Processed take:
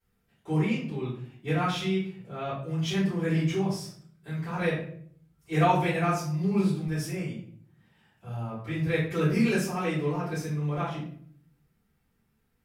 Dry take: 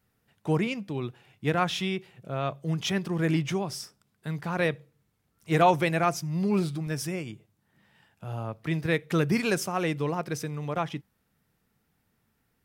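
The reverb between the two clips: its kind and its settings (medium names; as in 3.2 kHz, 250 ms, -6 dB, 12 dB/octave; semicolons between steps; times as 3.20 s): simulated room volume 76 m³, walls mixed, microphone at 3.5 m; trim -15.5 dB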